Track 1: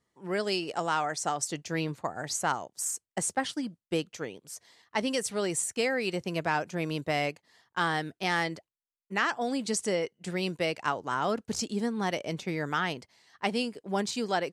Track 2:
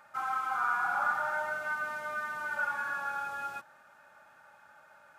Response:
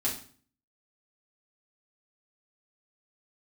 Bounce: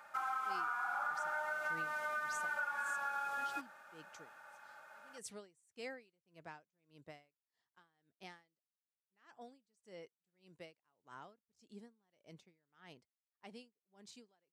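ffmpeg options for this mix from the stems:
-filter_complex "[0:a]aeval=exprs='val(0)*pow(10,-32*(0.5-0.5*cos(2*PI*1.7*n/s))/20)':channel_layout=same,volume=-13.5dB,afade=type=out:start_time=5.53:duration=0.75:silence=0.398107[link_01];[1:a]highpass=frequency=380:poles=1,volume=1dB[link_02];[link_01][link_02]amix=inputs=2:normalize=0,acompressor=threshold=-36dB:ratio=6"

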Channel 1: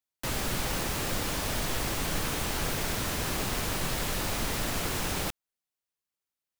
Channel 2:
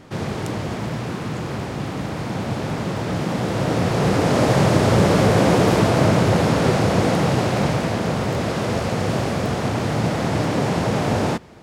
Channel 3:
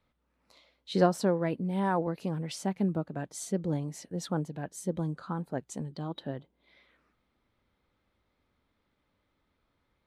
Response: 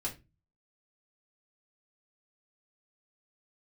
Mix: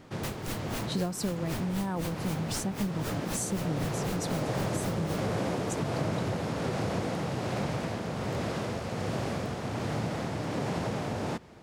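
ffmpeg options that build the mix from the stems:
-filter_complex "[0:a]aeval=exprs='val(0)*pow(10,-28*(0.5-0.5*cos(2*PI*3.9*n/s))/20)':channel_layout=same,volume=-2.5dB[link_01];[1:a]tremolo=f=1.3:d=0.45,volume=-7dB[link_02];[2:a]bass=frequency=250:gain=10,treble=frequency=4000:gain=14,volume=-4dB[link_03];[link_01][link_02][link_03]amix=inputs=3:normalize=0,acompressor=threshold=-28dB:ratio=4"

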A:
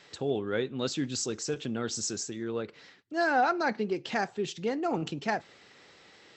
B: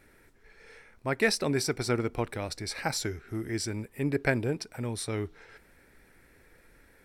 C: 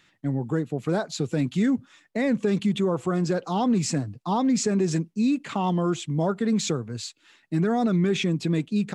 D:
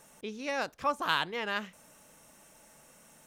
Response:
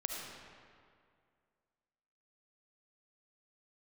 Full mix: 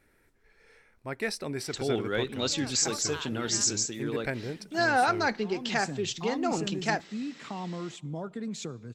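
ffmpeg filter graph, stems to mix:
-filter_complex "[0:a]highshelf=frequency=2100:gain=8.5,adelay=1600,volume=-0.5dB[link_01];[1:a]volume=-6.5dB,asplit=2[link_02][link_03];[2:a]acompressor=threshold=-26dB:ratio=2,adelay=1950,volume=-9.5dB,asplit=2[link_04][link_05];[link_05]volume=-22.5dB[link_06];[3:a]adelay=2050,volume=-12dB[link_07];[link_03]apad=whole_len=480407[link_08];[link_04][link_08]sidechaincompress=threshold=-53dB:ratio=8:attack=16:release=487[link_09];[4:a]atrim=start_sample=2205[link_10];[link_06][link_10]afir=irnorm=-1:irlink=0[link_11];[link_01][link_02][link_09][link_07][link_11]amix=inputs=5:normalize=0"

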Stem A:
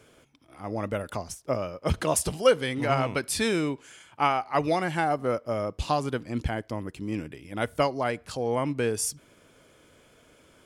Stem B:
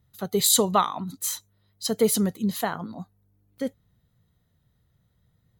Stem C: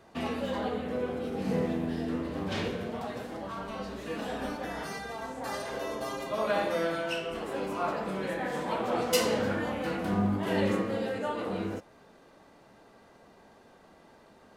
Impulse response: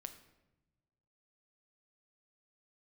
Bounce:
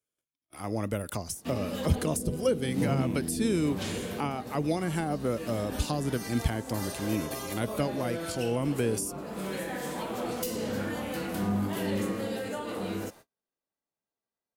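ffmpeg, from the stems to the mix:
-filter_complex "[0:a]volume=2.5dB[link_01];[2:a]aeval=exprs='0.282*sin(PI/2*2*val(0)/0.282)':channel_layout=same,adelay=1300,volume=-9dB[link_02];[link_01][link_02]amix=inputs=2:normalize=0,agate=range=-40dB:threshold=-49dB:ratio=16:detection=peak,aemphasis=mode=production:type=75fm,acrossover=split=410[link_03][link_04];[link_04]acompressor=threshold=-35dB:ratio=6[link_05];[link_03][link_05]amix=inputs=2:normalize=0"

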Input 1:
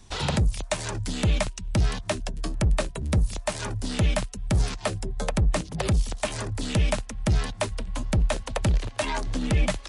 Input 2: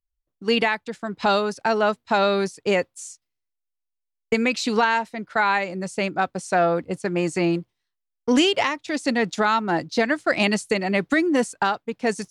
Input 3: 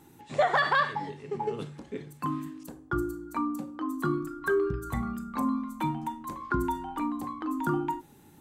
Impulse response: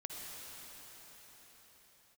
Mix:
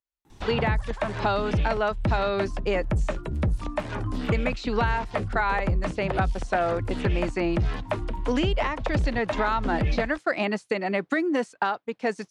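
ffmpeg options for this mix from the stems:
-filter_complex "[0:a]acrossover=split=3000[link_01][link_02];[link_02]acompressor=threshold=-46dB:ratio=4:attack=1:release=60[link_03];[link_01][link_03]amix=inputs=2:normalize=0,adelay=300,volume=1dB[link_04];[1:a]highpass=frequency=310:poles=1,volume=0dB,asplit=2[link_05][link_06];[2:a]adelay=250,volume=-4.5dB[link_07];[link_06]apad=whole_len=381800[link_08];[link_07][link_08]sidechaincompress=threshold=-33dB:ratio=8:attack=16:release=1050[link_09];[link_04][link_05][link_09]amix=inputs=3:normalize=0,highshelf=frequency=6100:gain=-10.5,acrossover=split=1900|4900[link_10][link_11][link_12];[link_10]acompressor=threshold=-21dB:ratio=4[link_13];[link_11]acompressor=threshold=-37dB:ratio=4[link_14];[link_12]acompressor=threshold=-55dB:ratio=4[link_15];[link_13][link_14][link_15]amix=inputs=3:normalize=0"

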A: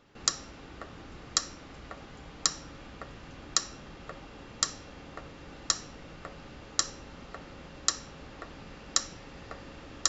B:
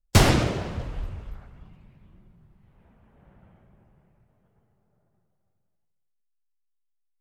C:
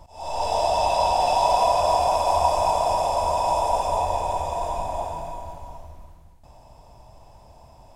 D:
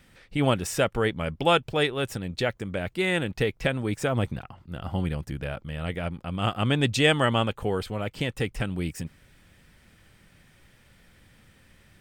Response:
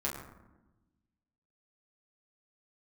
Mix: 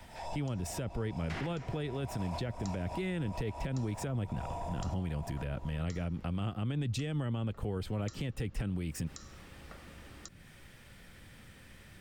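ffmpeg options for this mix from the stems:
-filter_complex "[0:a]adelay=200,volume=-12dB,asplit=2[link_01][link_02];[link_02]volume=-8dB[link_03];[1:a]bandpass=frequency=1900:width_type=q:width=1.8:csg=0,adelay=1150,volume=2dB[link_04];[2:a]asoftclip=type=tanh:threshold=-21dB,volume=-7dB,asplit=2[link_05][link_06];[link_06]volume=-16.5dB[link_07];[3:a]volume=2.5dB,asplit=2[link_08][link_09];[link_09]apad=whole_len=350657[link_10];[link_05][link_10]sidechaincompress=threshold=-29dB:ratio=8:attack=16:release=235[link_11];[4:a]atrim=start_sample=2205[link_12];[link_03][link_07]amix=inputs=2:normalize=0[link_13];[link_13][link_12]afir=irnorm=-1:irlink=0[link_14];[link_01][link_04][link_11][link_08][link_14]amix=inputs=5:normalize=0,acrossover=split=160|390[link_15][link_16][link_17];[link_15]acompressor=threshold=-30dB:ratio=4[link_18];[link_16]acompressor=threshold=-35dB:ratio=4[link_19];[link_17]acompressor=threshold=-41dB:ratio=4[link_20];[link_18][link_19][link_20]amix=inputs=3:normalize=0,alimiter=level_in=3dB:limit=-24dB:level=0:latency=1:release=53,volume=-3dB"

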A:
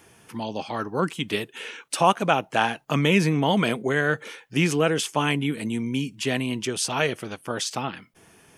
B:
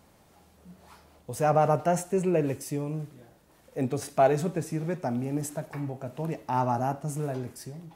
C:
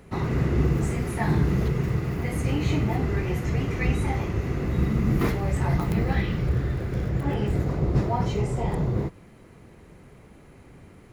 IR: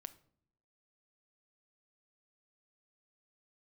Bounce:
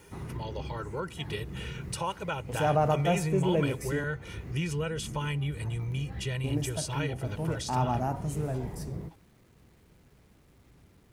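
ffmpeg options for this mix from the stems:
-filter_complex "[0:a]asubboost=boost=6.5:cutoff=120,aecho=1:1:2.1:0.87,volume=-5.5dB,asplit=2[link_01][link_02];[link_02]volume=-16dB[link_03];[1:a]adelay=1200,volume=-3.5dB,asplit=3[link_04][link_05][link_06];[link_04]atrim=end=4.04,asetpts=PTS-STARTPTS,afade=type=out:start_time=4.036:duration=0.004:curve=hsin[link_07];[link_05]atrim=start=4.04:end=6.44,asetpts=PTS-STARTPTS,volume=0[link_08];[link_06]atrim=start=6.44,asetpts=PTS-STARTPTS,afade=type=in:duration=0.004:curve=hsin[link_09];[link_07][link_08][link_09]concat=n=3:v=0:a=1[link_10];[2:a]aeval=exprs='val(0)+0.00126*(sin(2*PI*60*n/s)+sin(2*PI*2*60*n/s)/2+sin(2*PI*3*60*n/s)/3+sin(2*PI*4*60*n/s)/4+sin(2*PI*5*60*n/s)/5)':channel_layout=same,volume=-14dB[link_11];[link_01][link_11]amix=inputs=2:normalize=0,acrusher=bits=10:mix=0:aa=0.000001,acompressor=threshold=-39dB:ratio=2.5,volume=0dB[link_12];[3:a]atrim=start_sample=2205[link_13];[link_03][link_13]afir=irnorm=-1:irlink=0[link_14];[link_10][link_12][link_14]amix=inputs=3:normalize=0,equalizer=frequency=69:width=0.35:gain=4.5"

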